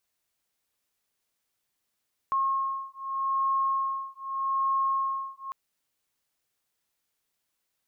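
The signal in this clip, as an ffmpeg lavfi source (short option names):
-f lavfi -i "aevalsrc='0.0376*(sin(2*PI*1080*t)+sin(2*PI*1080.82*t))':d=3.2:s=44100"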